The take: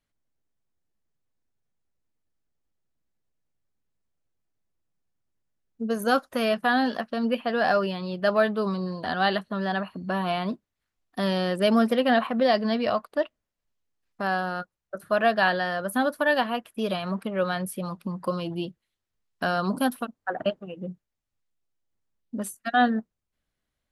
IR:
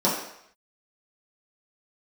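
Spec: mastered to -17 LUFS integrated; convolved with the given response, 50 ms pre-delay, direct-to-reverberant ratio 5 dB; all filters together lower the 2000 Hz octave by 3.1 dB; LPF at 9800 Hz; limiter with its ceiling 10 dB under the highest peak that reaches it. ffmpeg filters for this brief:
-filter_complex "[0:a]lowpass=9.8k,equalizer=f=2k:t=o:g=-4,alimiter=limit=-19.5dB:level=0:latency=1,asplit=2[a][b];[1:a]atrim=start_sample=2205,adelay=50[c];[b][c]afir=irnorm=-1:irlink=0,volume=-20.5dB[d];[a][d]amix=inputs=2:normalize=0,volume=10dB"

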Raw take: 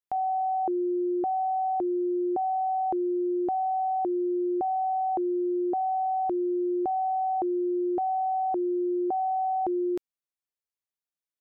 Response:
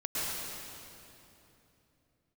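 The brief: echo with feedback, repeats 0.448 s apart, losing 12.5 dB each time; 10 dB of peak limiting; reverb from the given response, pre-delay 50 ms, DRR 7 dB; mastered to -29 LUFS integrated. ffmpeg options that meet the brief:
-filter_complex "[0:a]alimiter=level_in=10dB:limit=-24dB:level=0:latency=1,volume=-10dB,aecho=1:1:448|896|1344:0.237|0.0569|0.0137,asplit=2[a][b];[1:a]atrim=start_sample=2205,adelay=50[c];[b][c]afir=irnorm=-1:irlink=0,volume=-14dB[d];[a][d]amix=inputs=2:normalize=0,volume=6dB"

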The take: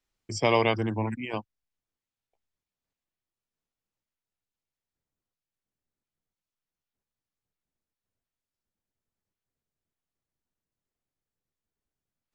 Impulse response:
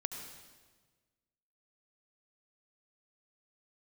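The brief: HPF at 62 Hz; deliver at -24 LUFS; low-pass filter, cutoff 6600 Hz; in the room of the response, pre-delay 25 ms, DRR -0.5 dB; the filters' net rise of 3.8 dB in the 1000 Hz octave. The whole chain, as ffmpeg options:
-filter_complex "[0:a]highpass=62,lowpass=6.6k,equalizer=f=1k:t=o:g=4.5,asplit=2[a][b];[1:a]atrim=start_sample=2205,adelay=25[c];[b][c]afir=irnorm=-1:irlink=0,volume=0dB[d];[a][d]amix=inputs=2:normalize=0,volume=-1dB"

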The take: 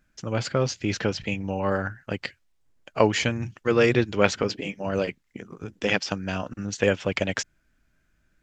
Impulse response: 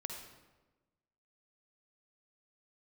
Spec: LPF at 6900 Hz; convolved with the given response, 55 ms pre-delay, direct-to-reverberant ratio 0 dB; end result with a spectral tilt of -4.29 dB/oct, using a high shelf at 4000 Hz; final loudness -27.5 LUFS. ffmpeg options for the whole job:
-filter_complex "[0:a]lowpass=6.9k,highshelf=f=4k:g=9,asplit=2[a][b];[1:a]atrim=start_sample=2205,adelay=55[c];[b][c]afir=irnorm=-1:irlink=0,volume=1dB[d];[a][d]amix=inputs=2:normalize=0,volume=-5.5dB"

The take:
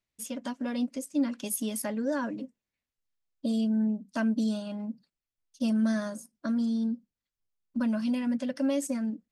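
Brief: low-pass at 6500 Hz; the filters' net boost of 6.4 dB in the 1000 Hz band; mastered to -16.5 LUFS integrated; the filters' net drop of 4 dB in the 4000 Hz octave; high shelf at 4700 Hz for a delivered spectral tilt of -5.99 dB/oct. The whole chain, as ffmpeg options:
-af "lowpass=6.5k,equalizer=f=1k:t=o:g=8,equalizer=f=4k:t=o:g=-3,highshelf=f=4.7k:g=-4.5,volume=14dB"

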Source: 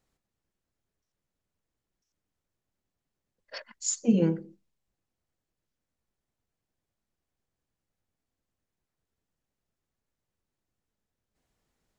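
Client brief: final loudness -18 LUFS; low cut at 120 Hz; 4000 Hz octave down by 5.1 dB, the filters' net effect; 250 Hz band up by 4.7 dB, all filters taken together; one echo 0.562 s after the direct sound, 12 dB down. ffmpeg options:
-af "highpass=120,equalizer=f=250:t=o:g=6.5,equalizer=f=4k:t=o:g=-7.5,aecho=1:1:562:0.251,volume=7dB"

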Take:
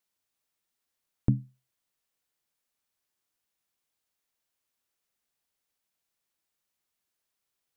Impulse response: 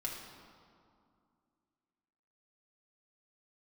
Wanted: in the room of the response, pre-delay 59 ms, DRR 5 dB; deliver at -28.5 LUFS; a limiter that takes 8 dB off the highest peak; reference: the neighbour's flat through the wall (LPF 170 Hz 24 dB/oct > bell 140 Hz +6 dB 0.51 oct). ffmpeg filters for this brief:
-filter_complex "[0:a]alimiter=limit=-18dB:level=0:latency=1,asplit=2[a][b];[1:a]atrim=start_sample=2205,adelay=59[c];[b][c]afir=irnorm=-1:irlink=0,volume=-6dB[d];[a][d]amix=inputs=2:normalize=0,lowpass=f=170:w=0.5412,lowpass=f=170:w=1.3066,equalizer=f=140:t=o:w=0.51:g=6,volume=6dB"

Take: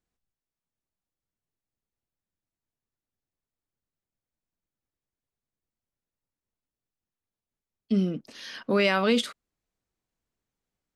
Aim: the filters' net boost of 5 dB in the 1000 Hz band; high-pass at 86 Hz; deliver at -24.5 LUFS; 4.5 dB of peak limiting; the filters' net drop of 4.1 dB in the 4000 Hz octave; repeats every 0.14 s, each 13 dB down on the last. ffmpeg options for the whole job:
-af "highpass=86,equalizer=f=1k:t=o:g=7,equalizer=f=4k:t=o:g=-6.5,alimiter=limit=-13dB:level=0:latency=1,aecho=1:1:140|280|420:0.224|0.0493|0.0108,volume=1.5dB"

